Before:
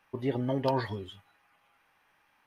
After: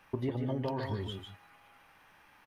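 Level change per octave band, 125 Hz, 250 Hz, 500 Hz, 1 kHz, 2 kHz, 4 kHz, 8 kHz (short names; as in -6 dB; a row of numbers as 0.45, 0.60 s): -0.5 dB, -3.0 dB, -5.0 dB, -7.0 dB, -5.0 dB, -1.0 dB, n/a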